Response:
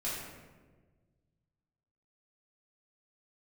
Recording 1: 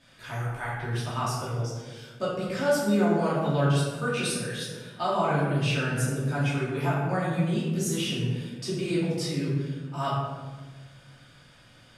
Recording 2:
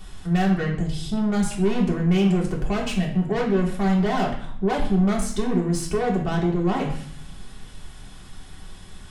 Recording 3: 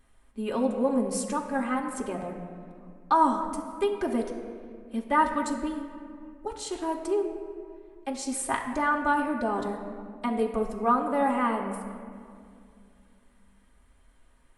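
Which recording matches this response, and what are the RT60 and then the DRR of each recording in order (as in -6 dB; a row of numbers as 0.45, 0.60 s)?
1; 1.4, 0.60, 2.2 s; -9.0, -2.5, -0.5 dB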